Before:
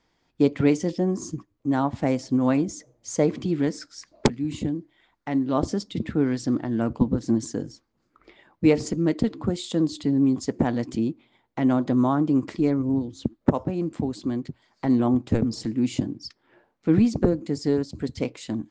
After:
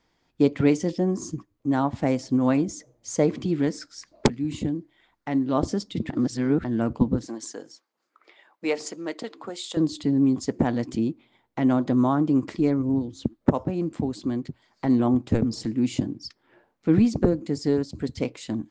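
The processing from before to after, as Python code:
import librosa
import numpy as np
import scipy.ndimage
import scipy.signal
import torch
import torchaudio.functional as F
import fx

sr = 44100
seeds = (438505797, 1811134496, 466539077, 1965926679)

y = fx.highpass(x, sr, hz=570.0, slope=12, at=(7.26, 9.77))
y = fx.edit(y, sr, fx.reverse_span(start_s=6.1, length_s=0.54), tone=tone)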